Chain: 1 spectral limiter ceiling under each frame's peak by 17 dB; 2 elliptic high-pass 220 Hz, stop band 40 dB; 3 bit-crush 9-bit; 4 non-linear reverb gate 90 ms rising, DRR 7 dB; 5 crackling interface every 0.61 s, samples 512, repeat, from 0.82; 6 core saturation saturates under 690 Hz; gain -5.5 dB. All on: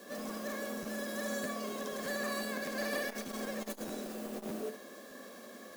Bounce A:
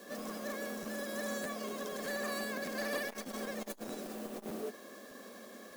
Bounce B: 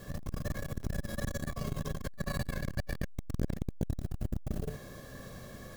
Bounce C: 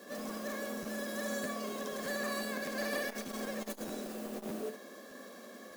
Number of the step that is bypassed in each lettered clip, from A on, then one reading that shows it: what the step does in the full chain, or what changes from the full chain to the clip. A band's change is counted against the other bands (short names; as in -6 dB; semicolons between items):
4, loudness change -1.0 LU; 2, 125 Hz band +23.0 dB; 3, distortion -25 dB